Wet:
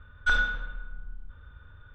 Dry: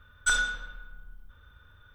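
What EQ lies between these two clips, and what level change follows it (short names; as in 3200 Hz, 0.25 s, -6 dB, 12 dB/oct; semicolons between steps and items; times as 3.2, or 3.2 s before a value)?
air absorption 300 m; low shelf 210 Hz +4 dB; +3.5 dB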